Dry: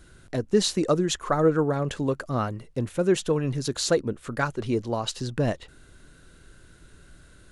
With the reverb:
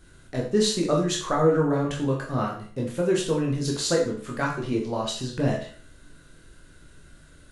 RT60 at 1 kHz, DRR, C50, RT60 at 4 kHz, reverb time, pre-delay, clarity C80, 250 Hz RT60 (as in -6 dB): 0.45 s, -2.0 dB, 6.5 dB, 0.45 s, 0.45 s, 14 ms, 10.0 dB, 0.45 s